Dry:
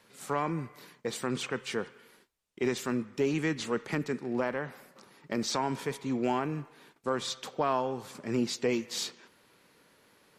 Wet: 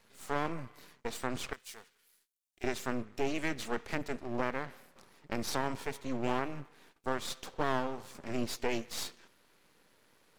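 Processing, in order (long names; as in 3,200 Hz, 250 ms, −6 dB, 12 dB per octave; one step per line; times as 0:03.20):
half-wave rectification
0:01.53–0:02.64: first-order pre-emphasis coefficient 0.9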